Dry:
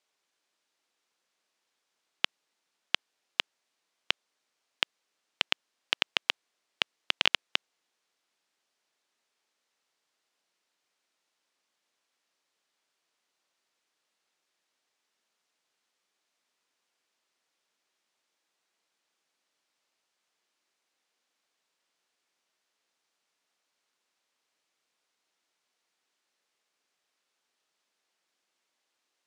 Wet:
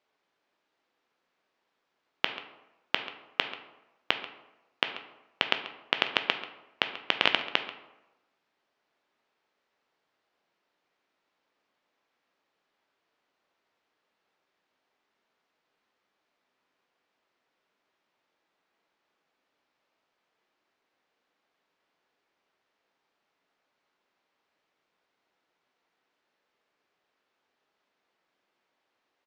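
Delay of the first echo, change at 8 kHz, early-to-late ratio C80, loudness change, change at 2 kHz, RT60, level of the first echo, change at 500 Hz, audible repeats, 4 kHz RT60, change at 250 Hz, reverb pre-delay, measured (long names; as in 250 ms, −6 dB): 137 ms, can't be measured, 11.0 dB, +1.0 dB, +2.5 dB, 1.0 s, −16.5 dB, +7.5 dB, 1, 0.50 s, +8.0 dB, 9 ms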